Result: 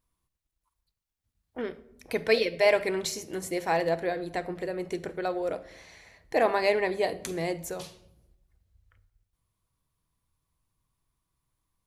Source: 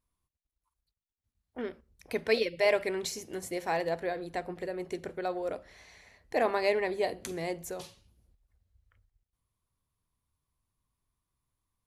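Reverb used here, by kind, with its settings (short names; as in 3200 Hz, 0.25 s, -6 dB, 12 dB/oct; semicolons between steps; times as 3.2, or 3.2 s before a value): shoebox room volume 2400 m³, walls furnished, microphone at 0.65 m; gain +3.5 dB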